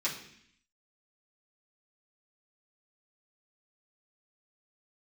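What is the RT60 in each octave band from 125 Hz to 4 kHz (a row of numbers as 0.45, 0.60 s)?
0.85, 0.85, 0.65, 0.65, 0.85, 0.80 s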